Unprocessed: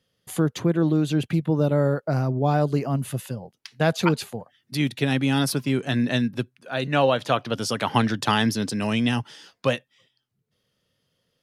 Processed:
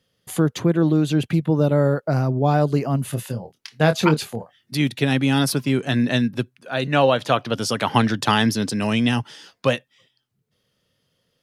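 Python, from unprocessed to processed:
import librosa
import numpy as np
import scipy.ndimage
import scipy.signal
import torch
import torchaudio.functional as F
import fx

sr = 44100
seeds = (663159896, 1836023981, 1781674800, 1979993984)

y = fx.doubler(x, sr, ms=26.0, db=-8.5, at=(3.1, 4.76))
y = y * 10.0 ** (3.0 / 20.0)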